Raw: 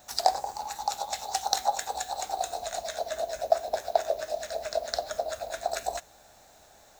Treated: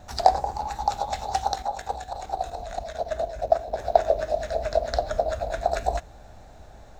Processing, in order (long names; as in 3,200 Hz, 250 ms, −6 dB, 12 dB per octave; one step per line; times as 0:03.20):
RIAA equalisation playback
0:01.52–0:03.79: output level in coarse steps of 10 dB
level +5 dB